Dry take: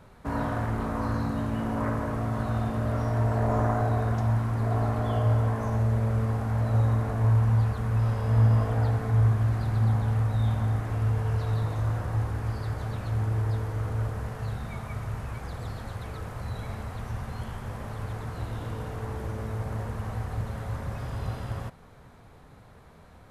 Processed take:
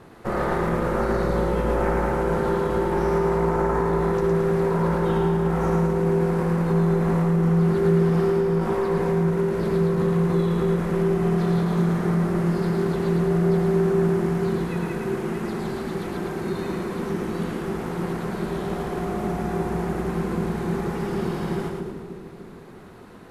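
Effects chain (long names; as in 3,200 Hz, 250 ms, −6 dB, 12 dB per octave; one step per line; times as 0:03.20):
ring modulation 280 Hz
brickwall limiter −22 dBFS, peak gain reduction 9.5 dB
echo with a time of its own for lows and highs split 450 Hz, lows 298 ms, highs 110 ms, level −4 dB
level +8 dB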